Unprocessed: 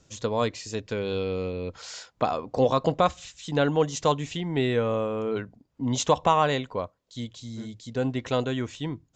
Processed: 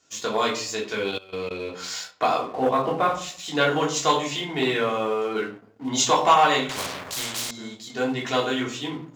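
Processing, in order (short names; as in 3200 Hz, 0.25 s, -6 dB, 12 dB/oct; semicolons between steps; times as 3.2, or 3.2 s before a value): 2.44–3.15 air absorption 480 m; tape echo 0.148 s, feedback 48%, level -23 dB, low-pass 1700 Hz; reverb RT60 0.45 s, pre-delay 3 ms, DRR -4 dB; sample leveller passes 1; 1.09–1.51 level quantiser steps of 20 dB; HPF 1000 Hz 6 dB/oct; 6.69–7.51 spectral compressor 4:1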